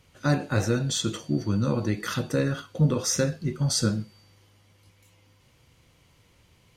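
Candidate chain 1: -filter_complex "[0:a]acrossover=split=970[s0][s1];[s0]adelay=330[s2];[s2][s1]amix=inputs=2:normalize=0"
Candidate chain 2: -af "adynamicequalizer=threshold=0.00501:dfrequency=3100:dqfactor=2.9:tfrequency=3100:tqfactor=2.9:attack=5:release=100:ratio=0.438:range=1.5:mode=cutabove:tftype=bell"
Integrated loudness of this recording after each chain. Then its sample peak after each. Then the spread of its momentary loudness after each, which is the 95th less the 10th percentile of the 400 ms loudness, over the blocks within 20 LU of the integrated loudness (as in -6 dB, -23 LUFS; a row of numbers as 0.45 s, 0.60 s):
-27.0 LUFS, -26.5 LUFS; -11.0 dBFS, -10.0 dBFS; 9 LU, 5 LU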